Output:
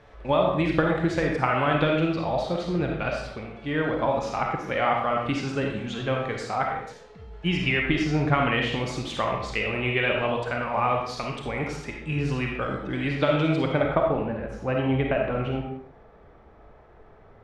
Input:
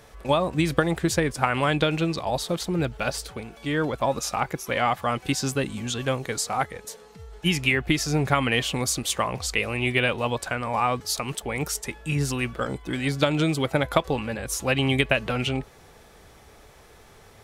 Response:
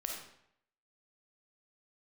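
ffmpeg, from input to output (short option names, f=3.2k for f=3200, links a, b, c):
-filter_complex "[0:a]asetnsamples=n=441:p=0,asendcmd='13.82 lowpass f 1300',lowpass=2.8k[a];[1:a]atrim=start_sample=2205,afade=t=out:st=0.36:d=0.01,atrim=end_sample=16317[b];[a][b]afir=irnorm=-1:irlink=0"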